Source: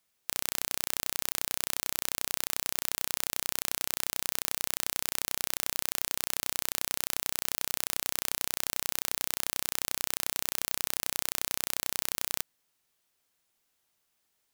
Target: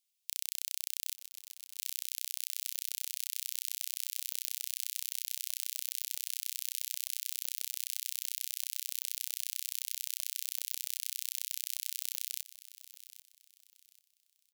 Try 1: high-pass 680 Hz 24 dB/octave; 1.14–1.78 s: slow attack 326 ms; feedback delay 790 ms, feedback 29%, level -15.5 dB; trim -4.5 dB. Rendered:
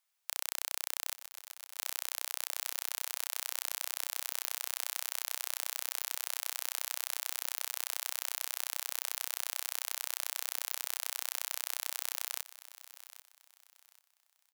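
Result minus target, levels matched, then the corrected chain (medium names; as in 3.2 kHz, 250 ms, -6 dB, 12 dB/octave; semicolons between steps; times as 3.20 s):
2 kHz band +7.5 dB
high-pass 2.7 kHz 24 dB/octave; 1.14–1.78 s: slow attack 326 ms; feedback delay 790 ms, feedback 29%, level -15.5 dB; trim -4.5 dB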